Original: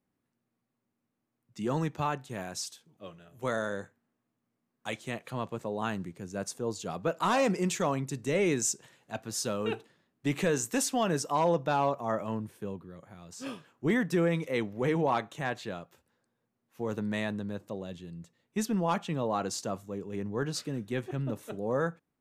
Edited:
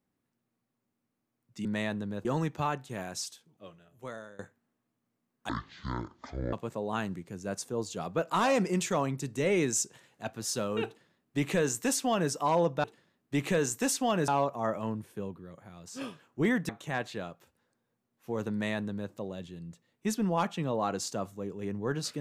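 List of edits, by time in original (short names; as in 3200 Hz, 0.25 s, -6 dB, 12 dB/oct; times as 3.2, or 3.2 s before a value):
2.63–3.79 fade out, to -21 dB
4.89–5.42 speed 51%
9.76–11.2 copy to 11.73
14.14–15.2 cut
17.03–17.63 copy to 1.65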